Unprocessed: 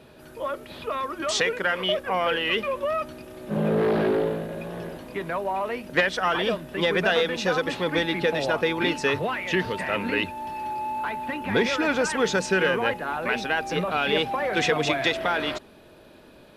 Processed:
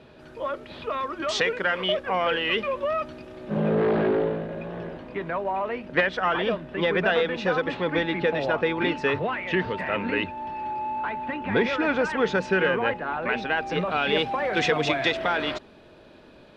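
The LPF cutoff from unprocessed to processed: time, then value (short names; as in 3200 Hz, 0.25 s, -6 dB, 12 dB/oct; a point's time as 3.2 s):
3.26 s 4800 Hz
4.01 s 2900 Hz
13.31 s 2900 Hz
14.19 s 5500 Hz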